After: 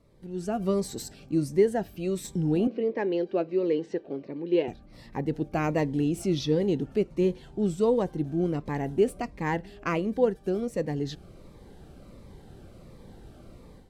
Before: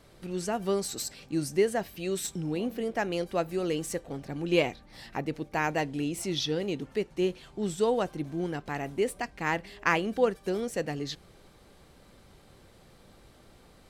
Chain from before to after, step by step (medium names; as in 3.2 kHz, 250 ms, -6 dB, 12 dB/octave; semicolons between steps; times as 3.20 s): tilt shelf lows +6 dB, about 1.3 kHz; level rider gain up to 12.5 dB; 2.67–4.68 s: cabinet simulation 310–4200 Hz, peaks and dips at 390 Hz +5 dB, 740 Hz -7 dB, 1.3 kHz -8 dB, 3.4 kHz -4 dB; Shepard-style phaser falling 1.4 Hz; trim -9 dB